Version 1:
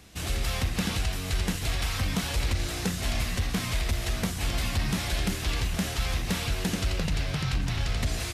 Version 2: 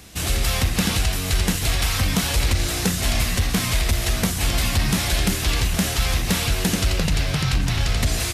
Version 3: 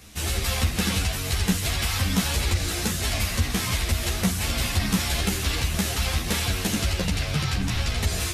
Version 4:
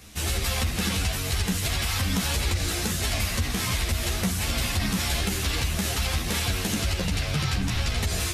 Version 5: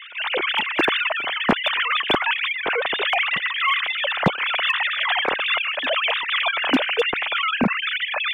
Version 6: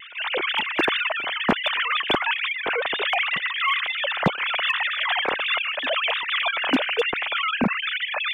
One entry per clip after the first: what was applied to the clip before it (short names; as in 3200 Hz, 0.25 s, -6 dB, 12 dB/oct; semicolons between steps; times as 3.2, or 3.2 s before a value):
high shelf 6800 Hz +6.5 dB; gain +7 dB
ensemble effect
limiter -16 dBFS, peak gain reduction 5 dB
sine-wave speech; hard clip -14.5 dBFS, distortion -20 dB; reverse echo 0.901 s -20 dB; gain +3.5 dB
vibrato 0.38 Hz 6.9 cents; gain -2 dB